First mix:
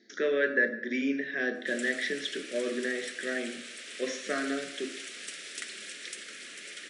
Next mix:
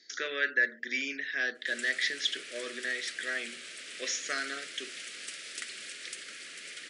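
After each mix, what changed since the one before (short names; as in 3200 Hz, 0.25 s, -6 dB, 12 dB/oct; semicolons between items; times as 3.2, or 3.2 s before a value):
speech: add tilt +4 dB/oct; reverb: off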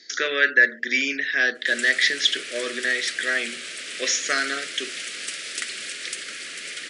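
speech +10.5 dB; background +10.0 dB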